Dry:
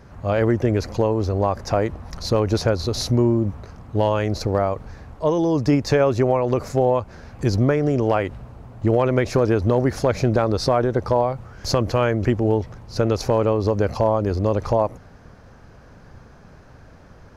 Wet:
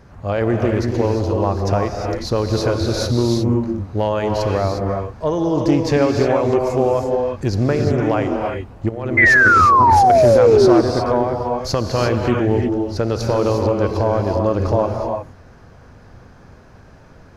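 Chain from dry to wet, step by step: 8.89–10.10 s: compressor with a negative ratio -23 dBFS, ratio -0.5; gated-style reverb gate 380 ms rising, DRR 1.5 dB; 9.17–10.81 s: painted sound fall 320–2100 Hz -11 dBFS; loudspeaker Doppler distortion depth 0.15 ms

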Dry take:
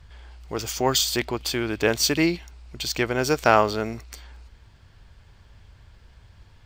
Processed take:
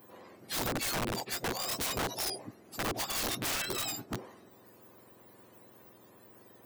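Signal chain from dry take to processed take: spectrum inverted on a logarithmic axis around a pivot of 1.3 kHz; compression 16:1, threshold -30 dBFS, peak gain reduction 19.5 dB; integer overflow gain 29.5 dB; trim +2 dB

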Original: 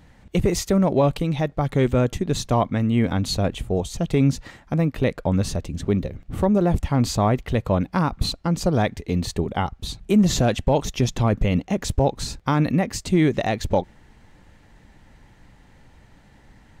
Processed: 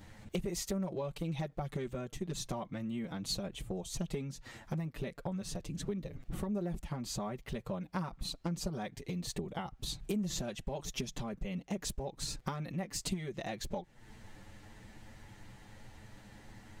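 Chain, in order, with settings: compression 10:1, threshold -33 dBFS, peak gain reduction 20.5 dB; touch-sensitive flanger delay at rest 10.6 ms, full sweep at -17.5 dBFS; treble shelf 4.8 kHz +6.5 dB; trim +1 dB

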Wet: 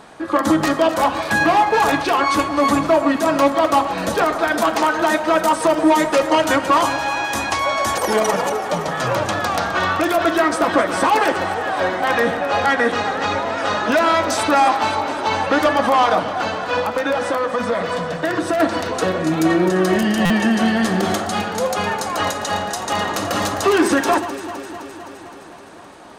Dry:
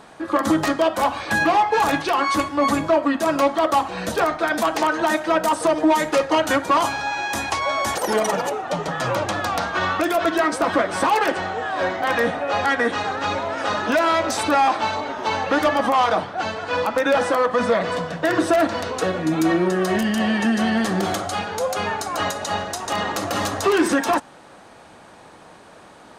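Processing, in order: 16.79–18.60 s: compression 3:1, threshold -21 dBFS, peak gain reduction 6 dB; echo whose repeats swap between lows and highs 129 ms, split 1.6 kHz, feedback 83%, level -11 dB; buffer glitch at 20.25 s, samples 256, times 8; trim +2.5 dB

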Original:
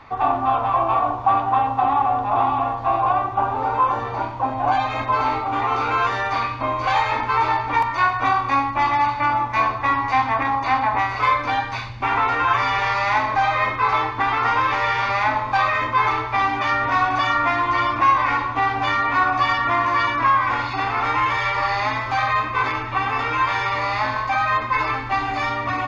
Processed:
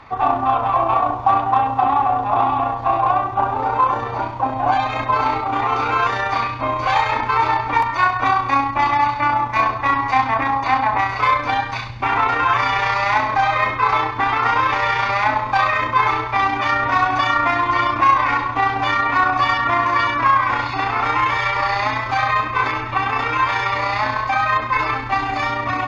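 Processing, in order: AM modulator 30 Hz, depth 20%; Chebyshev shaper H 8 -42 dB, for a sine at -6.5 dBFS; trim +3.5 dB

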